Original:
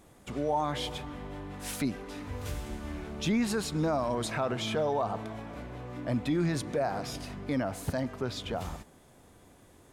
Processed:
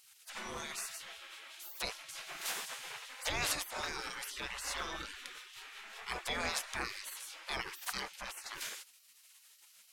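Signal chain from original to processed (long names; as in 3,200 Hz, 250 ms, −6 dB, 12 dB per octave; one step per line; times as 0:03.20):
gate on every frequency bin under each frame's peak −25 dB weak
level +9 dB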